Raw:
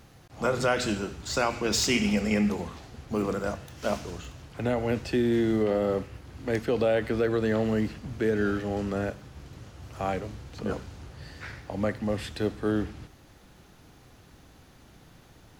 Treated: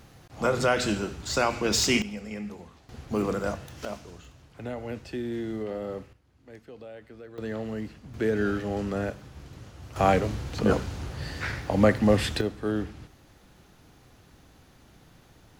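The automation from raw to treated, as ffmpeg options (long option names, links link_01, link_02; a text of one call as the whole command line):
ffmpeg -i in.wav -af "asetnsamples=nb_out_samples=441:pad=0,asendcmd='2.02 volume volume -11.5dB;2.89 volume volume 1dB;3.85 volume volume -8dB;6.13 volume volume -19.5dB;7.38 volume volume -7.5dB;8.14 volume volume 0dB;9.96 volume volume 8.5dB;12.41 volume volume -1.5dB',volume=1.5dB" out.wav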